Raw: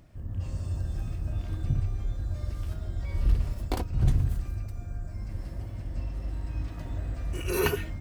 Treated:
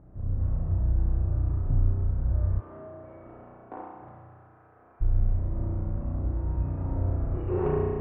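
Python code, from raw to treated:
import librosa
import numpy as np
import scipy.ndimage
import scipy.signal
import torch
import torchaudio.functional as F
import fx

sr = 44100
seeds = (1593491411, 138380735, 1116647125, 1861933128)

y = fx.lower_of_two(x, sr, delay_ms=0.31)
y = scipy.signal.sosfilt(scipy.signal.butter(4, 1300.0, 'lowpass', fs=sr, output='sos'), y)
y = fx.rev_spring(y, sr, rt60_s=2.1, pass_ms=(33,), chirp_ms=70, drr_db=-5.0)
y = fx.rider(y, sr, range_db=4, speed_s=0.5)
y = fx.highpass(y, sr, hz=fx.line((2.59, 320.0), (5.0, 820.0)), slope=12, at=(2.59, 5.0), fade=0.02)
y = F.gain(torch.from_numpy(y), -2.5).numpy()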